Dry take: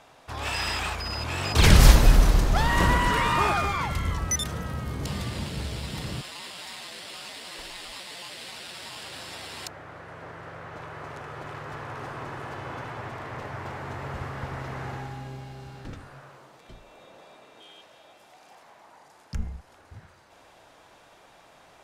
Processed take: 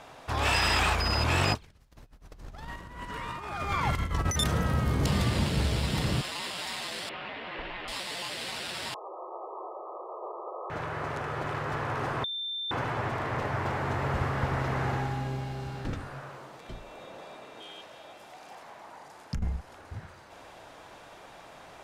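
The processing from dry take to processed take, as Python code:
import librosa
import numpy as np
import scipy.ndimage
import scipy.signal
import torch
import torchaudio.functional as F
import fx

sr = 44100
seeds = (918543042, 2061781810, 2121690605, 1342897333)

y = fx.lowpass(x, sr, hz=2700.0, slope=24, at=(7.09, 7.88))
y = fx.brickwall_bandpass(y, sr, low_hz=330.0, high_hz=1300.0, at=(8.94, 10.7))
y = fx.edit(y, sr, fx.bleep(start_s=12.24, length_s=0.47, hz=3570.0, db=-20.0), tone=tone)
y = fx.high_shelf(y, sr, hz=3300.0, db=-3.5)
y = fx.over_compress(y, sr, threshold_db=-30.0, ratio=-0.5)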